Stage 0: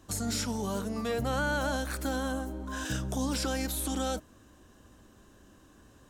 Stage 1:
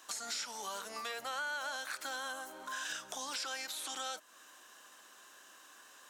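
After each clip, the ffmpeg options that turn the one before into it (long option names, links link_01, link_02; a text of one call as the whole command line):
ffmpeg -i in.wav -filter_complex "[0:a]acrossover=split=7300[link_01][link_02];[link_02]acompressor=threshold=-52dB:ratio=4:attack=1:release=60[link_03];[link_01][link_03]amix=inputs=2:normalize=0,highpass=1100,acompressor=threshold=-50dB:ratio=2.5,volume=8dB" out.wav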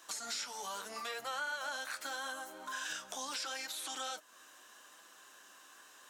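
ffmpeg -i in.wav -af "flanger=delay=5.9:depth=5.7:regen=-41:speed=0.79:shape=sinusoidal,volume=3.5dB" out.wav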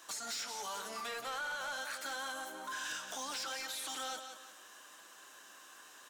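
ffmpeg -i in.wav -af "aecho=1:1:178|356|534|712:0.316|0.108|0.0366|0.0124,asoftclip=type=tanh:threshold=-36.5dB,volume=2dB" out.wav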